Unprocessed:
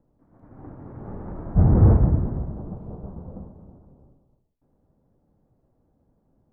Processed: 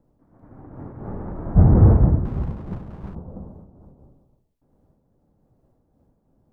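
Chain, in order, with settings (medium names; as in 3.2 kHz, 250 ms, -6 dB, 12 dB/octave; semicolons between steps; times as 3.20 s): 2.25–3.15 s: comb filter that takes the minimum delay 0.75 ms; random flutter of the level, depth 65%; trim +5.5 dB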